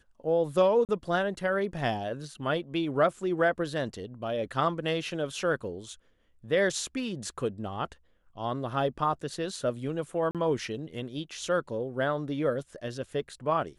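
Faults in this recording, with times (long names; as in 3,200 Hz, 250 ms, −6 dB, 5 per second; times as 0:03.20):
0:00.85–0:00.89: drop-out 38 ms
0:10.31–0:10.35: drop-out 37 ms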